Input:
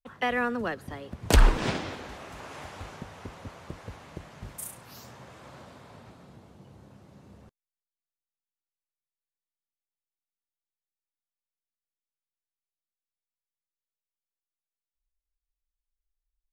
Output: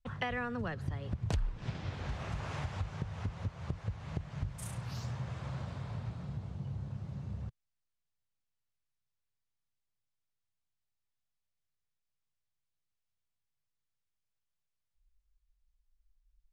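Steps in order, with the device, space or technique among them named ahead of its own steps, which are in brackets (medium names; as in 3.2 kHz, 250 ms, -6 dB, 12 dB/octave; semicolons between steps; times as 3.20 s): jukebox (low-pass 6.7 kHz 12 dB/octave; resonant low shelf 190 Hz +12 dB, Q 1.5; compression 6:1, threshold -35 dBFS, peak gain reduction 31 dB); trim +1.5 dB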